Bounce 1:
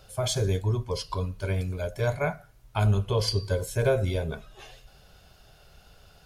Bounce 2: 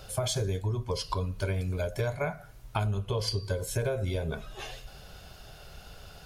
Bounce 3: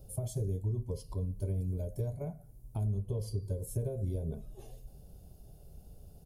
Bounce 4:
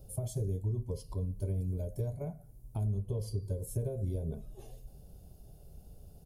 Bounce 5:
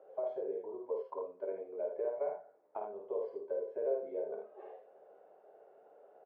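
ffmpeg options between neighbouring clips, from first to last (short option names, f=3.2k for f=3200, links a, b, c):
-af "acompressor=threshold=-34dB:ratio=6,volume=6.5dB"
-af "firequalizer=gain_entry='entry(240,0);entry(1400,-29);entry(10000,-3)':delay=0.05:min_phase=1,volume=-2.5dB"
-af anull
-af "asuperpass=centerf=920:order=8:qfactor=0.62,aecho=1:1:52|79:0.596|0.473,volume=7.5dB"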